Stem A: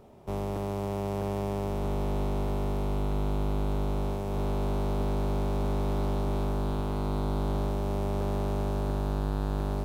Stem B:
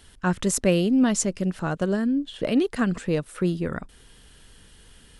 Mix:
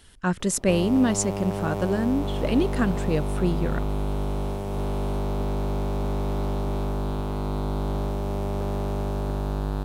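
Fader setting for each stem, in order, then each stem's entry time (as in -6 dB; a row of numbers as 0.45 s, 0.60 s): +2.0 dB, -1.0 dB; 0.40 s, 0.00 s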